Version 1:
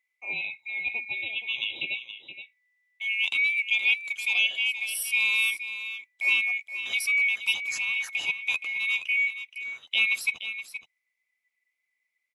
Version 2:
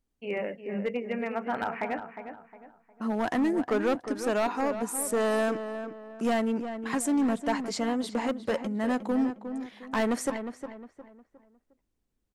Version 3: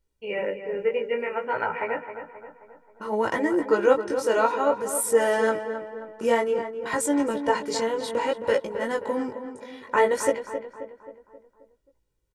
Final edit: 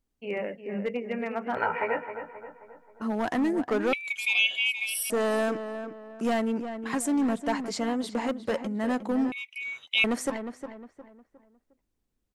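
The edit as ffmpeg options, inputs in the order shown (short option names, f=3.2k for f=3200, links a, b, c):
-filter_complex "[0:a]asplit=2[a][b];[1:a]asplit=4[c][d][e][f];[c]atrim=end=1.572[g];[2:a]atrim=start=1.568:end=3.022[h];[d]atrim=start=3.018:end=3.932[i];[a]atrim=start=3.928:end=5.102[j];[e]atrim=start=5.098:end=9.322[k];[b]atrim=start=9.318:end=10.042[l];[f]atrim=start=10.038[m];[g][h]acrossfade=d=0.004:c1=hsin:c2=hsin[n];[n][i]acrossfade=d=0.004:c1=hsin:c2=hsin[o];[o][j]acrossfade=d=0.004:c1=hsin:c2=hsin[p];[p][k]acrossfade=d=0.004:c1=hsin:c2=hsin[q];[q][l]acrossfade=d=0.004:c1=hsin:c2=hsin[r];[r][m]acrossfade=d=0.004:c1=hsin:c2=hsin"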